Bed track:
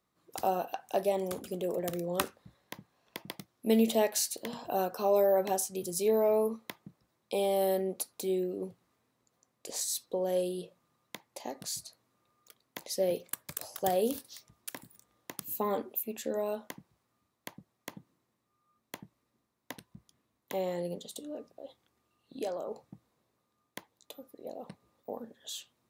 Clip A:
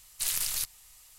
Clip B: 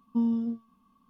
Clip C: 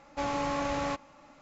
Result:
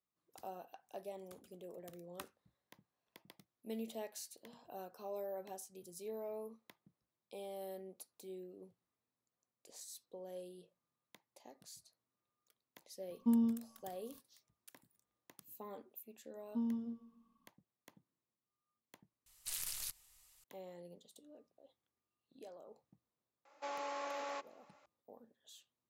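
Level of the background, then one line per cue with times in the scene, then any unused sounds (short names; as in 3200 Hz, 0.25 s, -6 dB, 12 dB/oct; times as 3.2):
bed track -18 dB
13.11 add B -5 dB + ending taper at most 150 dB/s
16.4 add B -11.5 dB + feedback echo 0.142 s, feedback 36%, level -16 dB
19.26 replace with A -12 dB
23.45 add C -10 dB + HPF 390 Hz 24 dB/oct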